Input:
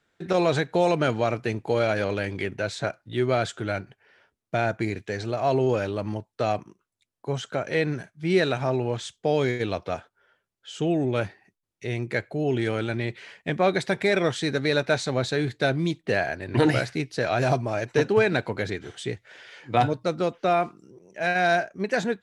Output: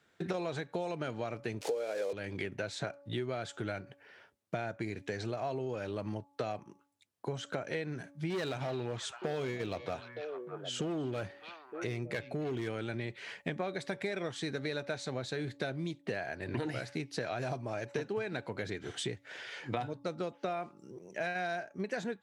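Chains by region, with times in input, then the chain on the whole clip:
1.61–2.13 s: zero-crossing glitches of -20.5 dBFS + band-pass 330–7100 Hz + peaking EQ 480 Hz +15 dB 0.5 oct
8.30–12.68 s: hard clipper -21 dBFS + repeats whose band climbs or falls 305 ms, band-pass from 3.3 kHz, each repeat -1.4 oct, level -9 dB
whole clip: de-hum 283.6 Hz, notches 4; compression 8:1, threshold -35 dBFS; high-pass 78 Hz; trim +1.5 dB

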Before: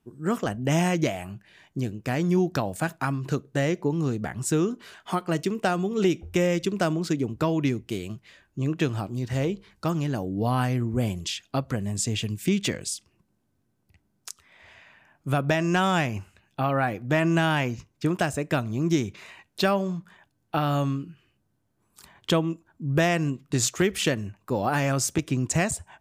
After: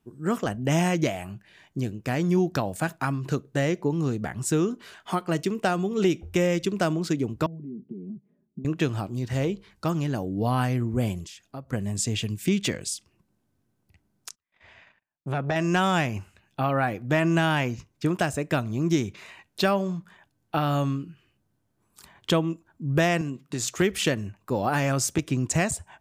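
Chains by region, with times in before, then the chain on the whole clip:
7.46–8.65 s: compression 16:1, threshold -32 dBFS + Butterworth band-pass 220 Hz, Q 1.1 + comb 4.8 ms, depth 100%
11.25–11.73 s: peaking EQ 3.3 kHz -8.5 dB 1.4 oct + compression 1.5:1, threshold -53 dBFS
14.29–15.56 s: gate -54 dBFS, range -33 dB + distance through air 69 m + transformer saturation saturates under 590 Hz
23.21–23.68 s: high-pass 130 Hz + compression 2:1, threshold -29 dBFS
whole clip: none

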